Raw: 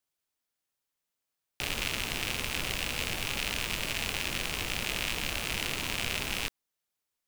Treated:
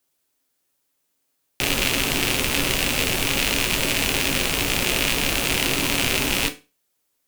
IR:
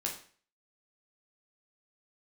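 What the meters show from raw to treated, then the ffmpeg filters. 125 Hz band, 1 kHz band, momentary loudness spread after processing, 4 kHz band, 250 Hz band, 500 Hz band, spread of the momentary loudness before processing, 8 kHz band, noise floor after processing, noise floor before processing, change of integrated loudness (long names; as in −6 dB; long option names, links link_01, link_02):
+10.5 dB, +10.5 dB, 1 LU, +10.5 dB, +15.0 dB, +13.5 dB, 1 LU, +12.5 dB, −73 dBFS, below −85 dBFS, +11.0 dB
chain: -filter_complex "[0:a]asplit=2[link_01][link_02];[link_02]equalizer=frequency=300:width=0.59:gain=11.5[link_03];[1:a]atrim=start_sample=2205,asetrate=70560,aresample=44100,highshelf=frequency=5500:gain=11[link_04];[link_03][link_04]afir=irnorm=-1:irlink=0,volume=-2dB[link_05];[link_01][link_05]amix=inputs=2:normalize=0,volume=5.5dB"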